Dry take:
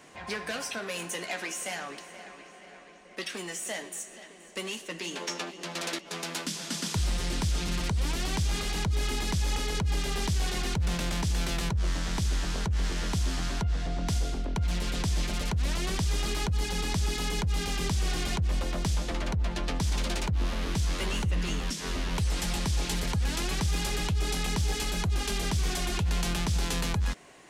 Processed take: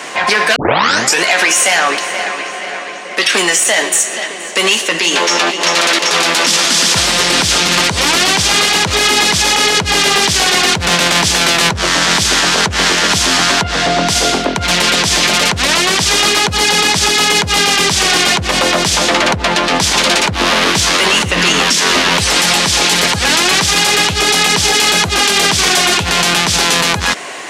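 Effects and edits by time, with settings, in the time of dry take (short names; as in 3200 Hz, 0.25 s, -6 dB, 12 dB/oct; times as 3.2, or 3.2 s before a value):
0.56 tape start 0.67 s
5.21–5.87 echo throw 0.39 s, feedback 85%, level -7.5 dB
whole clip: weighting filter A; maximiser +29 dB; gain -1 dB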